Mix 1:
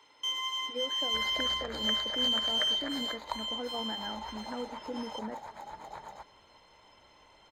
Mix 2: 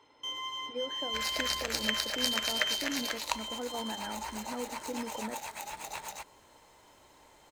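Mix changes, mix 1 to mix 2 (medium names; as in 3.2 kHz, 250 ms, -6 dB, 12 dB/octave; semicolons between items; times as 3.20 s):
first sound: add tilt shelf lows +6 dB, about 830 Hz; second sound: remove boxcar filter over 16 samples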